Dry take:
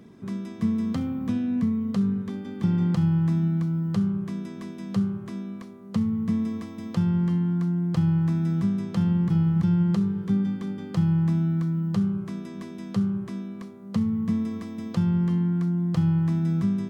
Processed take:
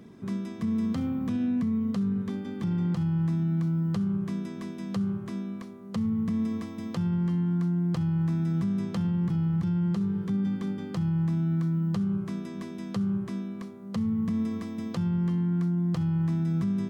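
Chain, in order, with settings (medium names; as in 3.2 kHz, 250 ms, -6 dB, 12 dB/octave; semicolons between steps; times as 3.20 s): peak limiter -21.5 dBFS, peak gain reduction 8.5 dB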